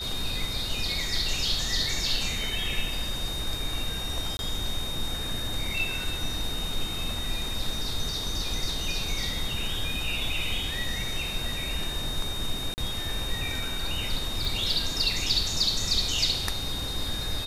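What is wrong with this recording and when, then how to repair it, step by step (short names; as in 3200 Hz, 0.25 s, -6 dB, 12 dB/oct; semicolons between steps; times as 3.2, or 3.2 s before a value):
tone 3700 Hz -33 dBFS
4.37–4.39 gap 21 ms
12.74–12.78 gap 39 ms
14.45 pop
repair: de-click; notch 3700 Hz, Q 30; interpolate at 4.37, 21 ms; interpolate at 12.74, 39 ms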